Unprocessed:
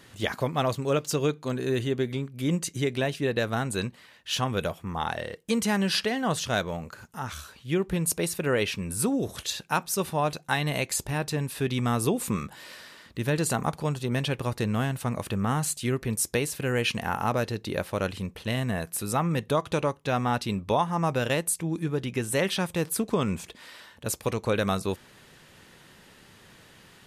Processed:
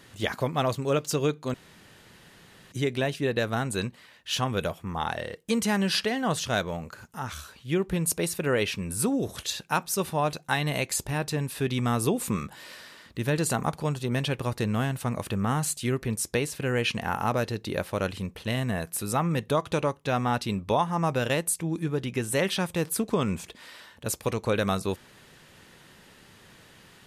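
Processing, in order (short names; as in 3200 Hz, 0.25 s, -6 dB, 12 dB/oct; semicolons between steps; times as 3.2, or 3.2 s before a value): 1.54–2.72 room tone; 16.07–17.08 high shelf 9800 Hz -7.5 dB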